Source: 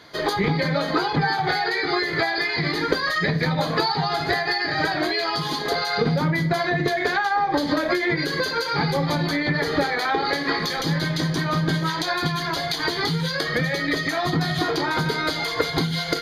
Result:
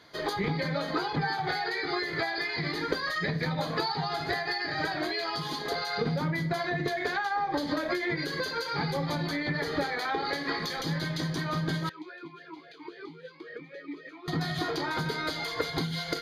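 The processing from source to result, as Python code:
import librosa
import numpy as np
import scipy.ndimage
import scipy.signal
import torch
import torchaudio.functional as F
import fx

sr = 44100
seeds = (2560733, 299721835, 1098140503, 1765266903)

y = fx.vowel_sweep(x, sr, vowels='e-u', hz=3.7, at=(11.89, 14.28))
y = F.gain(torch.from_numpy(y), -8.0).numpy()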